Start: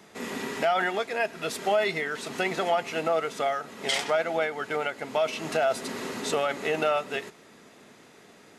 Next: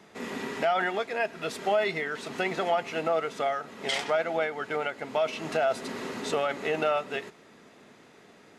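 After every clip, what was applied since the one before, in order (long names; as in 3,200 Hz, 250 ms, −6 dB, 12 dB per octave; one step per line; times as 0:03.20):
high-shelf EQ 6,600 Hz −9 dB
level −1 dB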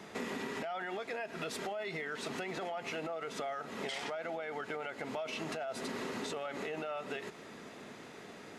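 brickwall limiter −26.5 dBFS, peak gain reduction 12 dB
downward compressor 6 to 1, threshold −41 dBFS, peak gain reduction 10.5 dB
level +4.5 dB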